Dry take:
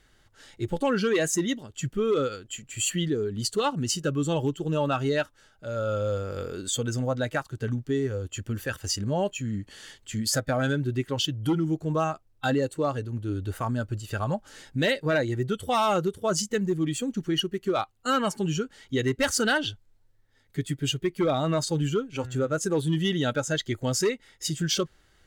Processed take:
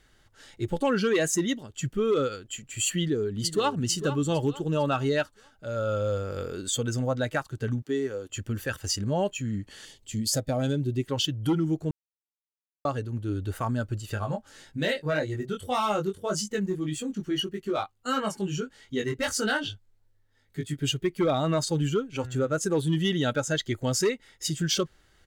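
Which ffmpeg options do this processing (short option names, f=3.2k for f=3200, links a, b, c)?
-filter_complex "[0:a]asplit=2[a][b];[b]afade=t=in:st=2.98:d=0.01,afade=t=out:st=3.74:d=0.01,aecho=0:1:450|900|1350|1800:0.266073|0.106429|0.0425716|0.0170286[c];[a][c]amix=inputs=2:normalize=0,asettb=1/sr,asplit=3[d][e][f];[d]atrim=end=7.824[g];[e]atrim=start=7.82:end=8.3,asetpts=PTS-STARTPTS,afade=t=in:d=0.004:c=qsin,afade=t=out:st=0.476:d=0.004:c=qsin,highpass=250[h];[f]atrim=start=8.296[i];[g][h]acrossfade=d=0.004:c1=hsin:c2=qsin[j];[j][i]acrossfade=d=0.004:c1=qsin:c2=hsin,asettb=1/sr,asplit=3[k][l][m];[k]atrim=end=9.854[n];[l]atrim=start=9.85:end=11.08,asetpts=PTS-STARTPTS,afade=t=in:d=0.004:c=qsin,afade=t=out:st=1.226:d=0.004:c=qsin,equalizer=f=1.5k:w=1.4:g=-13[o];[m]atrim=start=11.076[p];[n][o]acrossfade=d=0.004:c1=hsin:c2=qsin[q];[q][p]acrossfade=d=0.004:c1=qsin:c2=hsin,asplit=3[r][s][t];[r]afade=t=out:st=14.14:d=0.02[u];[s]flanger=delay=19:depth=2.1:speed=1.7,afade=t=in:st=14.14:d=0.02,afade=t=out:st=20.76:d=0.02[v];[t]afade=t=in:st=20.76:d=0.02[w];[u][v][w]amix=inputs=3:normalize=0,asplit=3[x][y][z];[x]atrim=end=11.91,asetpts=PTS-STARTPTS,afade=t=out:st=11.906:d=0.004:c=hsin[aa];[y]atrim=start=11.91:end=12.85,asetpts=PTS-STARTPTS,volume=0[ab];[z]atrim=start=12.85,asetpts=PTS-STARTPTS,afade=t=in:d=0.004:c=hsin[ac];[aa][ab][ac]concat=n=3:v=0:a=1"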